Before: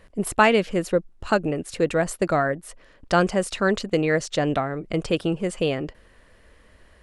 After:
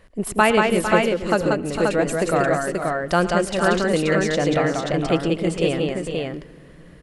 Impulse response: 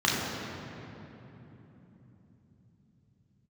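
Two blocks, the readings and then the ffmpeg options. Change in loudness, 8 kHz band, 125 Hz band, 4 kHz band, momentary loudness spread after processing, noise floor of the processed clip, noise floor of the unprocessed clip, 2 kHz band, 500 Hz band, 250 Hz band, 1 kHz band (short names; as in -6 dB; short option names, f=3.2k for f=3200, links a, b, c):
+3.0 dB, +3.0 dB, +3.5 dB, +3.0 dB, 7 LU, -45 dBFS, -55 dBFS, +3.5 dB, +3.5 dB, +3.5 dB, +3.0 dB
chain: -filter_complex "[0:a]aecho=1:1:109|185|454|478|531:0.158|0.668|0.335|0.224|0.668,asplit=2[a][b];[1:a]atrim=start_sample=2205,adelay=87[c];[b][c]afir=irnorm=-1:irlink=0,volume=-37dB[d];[a][d]amix=inputs=2:normalize=0"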